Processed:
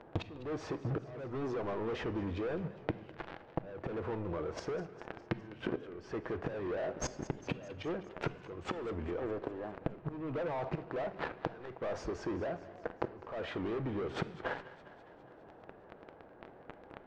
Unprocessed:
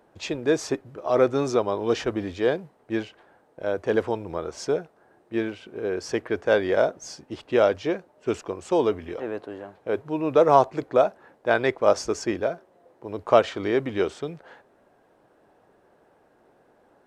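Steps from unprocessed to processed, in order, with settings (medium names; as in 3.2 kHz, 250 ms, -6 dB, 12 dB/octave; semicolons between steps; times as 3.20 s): peaking EQ 63 Hz +5.5 dB 1.3 oct; peak limiter -12 dBFS, peak gain reduction 8.5 dB; waveshaping leveller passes 5; inverted gate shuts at -15 dBFS, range -30 dB; Bessel low-pass 1.7 kHz, order 2; compression 10:1, threshold -48 dBFS, peak gain reduction 26.5 dB; thinning echo 204 ms, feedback 64%, level -16 dB; on a send at -13 dB: reverberation RT60 1.3 s, pre-delay 6 ms; on the sum: warped record 78 rpm, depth 100 cents; trim +13.5 dB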